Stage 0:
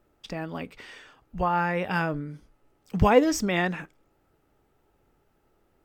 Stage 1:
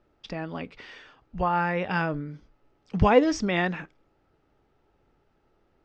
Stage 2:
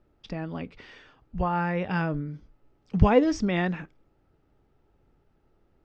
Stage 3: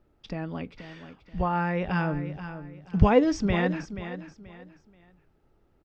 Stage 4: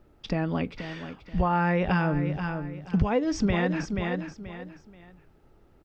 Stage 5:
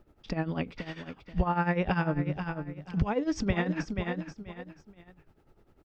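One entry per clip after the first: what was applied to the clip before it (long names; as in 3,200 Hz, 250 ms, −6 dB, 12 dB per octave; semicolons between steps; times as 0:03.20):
low-pass filter 5,600 Hz 24 dB per octave
low-shelf EQ 310 Hz +8.5 dB; level −4 dB
repeating echo 481 ms, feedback 29%, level −11.5 dB
downward compressor 16 to 1, threshold −27 dBFS, peak gain reduction 16.5 dB; level +7 dB
amplitude tremolo 10 Hz, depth 77%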